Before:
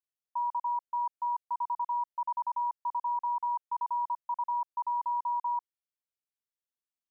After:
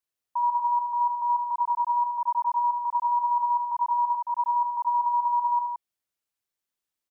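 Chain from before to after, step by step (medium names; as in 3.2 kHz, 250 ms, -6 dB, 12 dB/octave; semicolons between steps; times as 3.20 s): loudspeakers at several distances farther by 26 m -6 dB, 58 m -6 dB; trim +5 dB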